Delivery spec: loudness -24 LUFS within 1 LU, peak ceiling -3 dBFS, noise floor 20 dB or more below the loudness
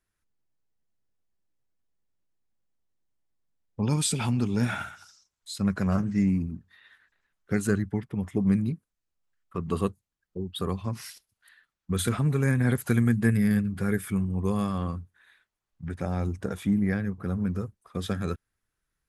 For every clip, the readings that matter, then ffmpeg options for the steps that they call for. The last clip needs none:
loudness -28.0 LUFS; peak level -9.5 dBFS; loudness target -24.0 LUFS
-> -af "volume=1.58"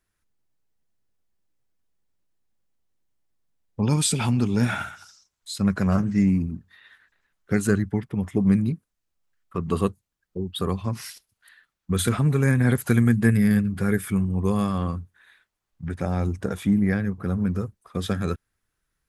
loudness -24.0 LUFS; peak level -5.5 dBFS; noise floor -81 dBFS

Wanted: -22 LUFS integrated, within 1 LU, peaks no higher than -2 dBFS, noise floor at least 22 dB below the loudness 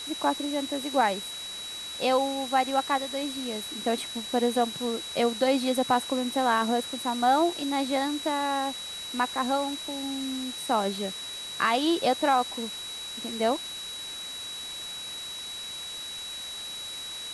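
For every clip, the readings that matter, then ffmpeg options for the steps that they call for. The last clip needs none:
steady tone 3.9 kHz; tone level -36 dBFS; noise floor -38 dBFS; noise floor target -51 dBFS; loudness -28.5 LUFS; peak level -10.5 dBFS; loudness target -22.0 LUFS
-> -af "bandreject=f=3900:w=30"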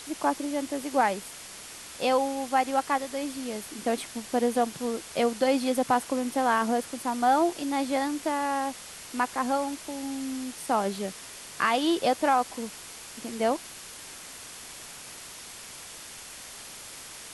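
steady tone not found; noise floor -44 dBFS; noise floor target -50 dBFS
-> -af "afftdn=nr=6:nf=-44"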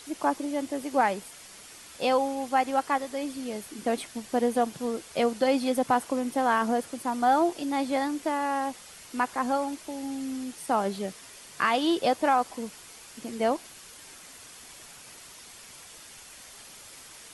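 noise floor -48 dBFS; noise floor target -50 dBFS
-> -af "afftdn=nr=6:nf=-48"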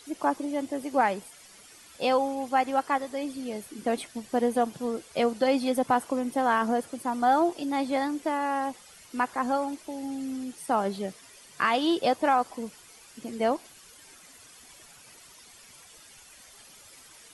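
noise floor -52 dBFS; loudness -28.0 LUFS; peak level -11.0 dBFS; loudness target -22.0 LUFS
-> -af "volume=2"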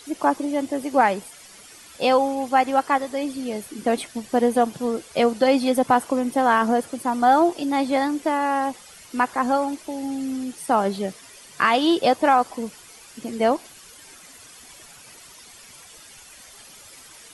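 loudness -22.0 LUFS; peak level -5.0 dBFS; noise floor -46 dBFS

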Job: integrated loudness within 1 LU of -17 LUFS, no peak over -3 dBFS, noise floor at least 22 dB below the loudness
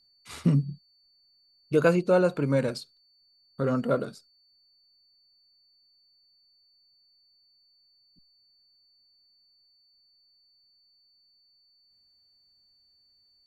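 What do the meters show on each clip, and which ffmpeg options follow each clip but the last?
steady tone 4.5 kHz; tone level -62 dBFS; loudness -26.0 LUFS; peak level -10.5 dBFS; loudness target -17.0 LUFS
-> -af "bandreject=f=4500:w=30"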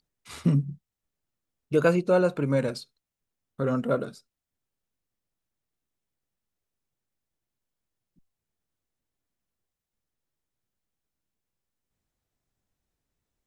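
steady tone not found; loudness -26.0 LUFS; peak level -10.5 dBFS; loudness target -17.0 LUFS
-> -af "volume=2.82,alimiter=limit=0.708:level=0:latency=1"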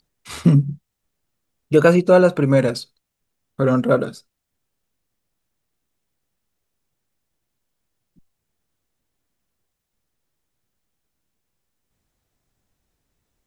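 loudness -17.0 LUFS; peak level -3.0 dBFS; noise floor -79 dBFS

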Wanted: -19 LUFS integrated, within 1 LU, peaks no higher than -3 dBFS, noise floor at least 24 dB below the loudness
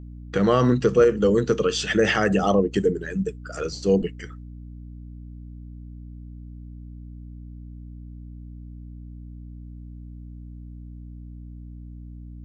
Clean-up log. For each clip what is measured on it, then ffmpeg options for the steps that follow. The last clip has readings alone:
hum 60 Hz; highest harmonic 300 Hz; hum level -37 dBFS; loudness -21.5 LUFS; peak level -5.5 dBFS; loudness target -19.0 LUFS
-> -af "bandreject=f=60:t=h:w=4,bandreject=f=120:t=h:w=4,bandreject=f=180:t=h:w=4,bandreject=f=240:t=h:w=4,bandreject=f=300:t=h:w=4"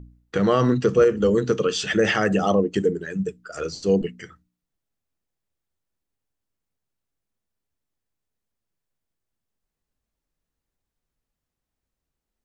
hum not found; loudness -21.5 LUFS; peak level -6.0 dBFS; loudness target -19.0 LUFS
-> -af "volume=1.33"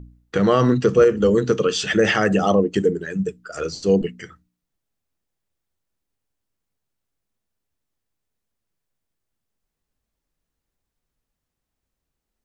loudness -19.0 LUFS; peak level -3.5 dBFS; noise floor -82 dBFS

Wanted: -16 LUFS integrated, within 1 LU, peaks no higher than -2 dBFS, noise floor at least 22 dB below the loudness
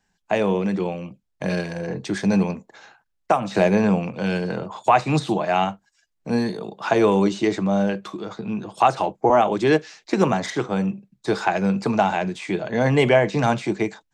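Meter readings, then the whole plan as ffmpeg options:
loudness -22.0 LUFS; peak level -4.0 dBFS; loudness target -16.0 LUFS
-> -af "volume=2,alimiter=limit=0.794:level=0:latency=1"

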